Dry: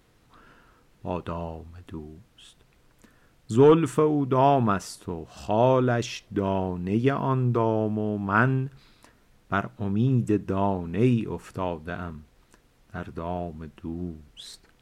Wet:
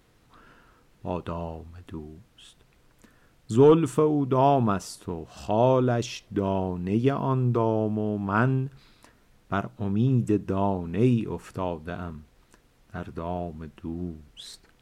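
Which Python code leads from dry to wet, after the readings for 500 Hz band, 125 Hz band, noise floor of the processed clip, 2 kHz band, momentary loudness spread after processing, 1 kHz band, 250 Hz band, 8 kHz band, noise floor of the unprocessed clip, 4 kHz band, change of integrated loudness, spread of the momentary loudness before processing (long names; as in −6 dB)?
−0.5 dB, 0.0 dB, −62 dBFS, −5.0 dB, 18 LU, −1.5 dB, 0.0 dB, 0.0 dB, −62 dBFS, −1.0 dB, −0.5 dB, 18 LU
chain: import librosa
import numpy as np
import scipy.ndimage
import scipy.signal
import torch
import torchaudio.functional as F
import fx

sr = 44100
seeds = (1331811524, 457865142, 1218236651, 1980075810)

y = fx.dynamic_eq(x, sr, hz=1800.0, q=1.5, threshold_db=-43.0, ratio=4.0, max_db=-7)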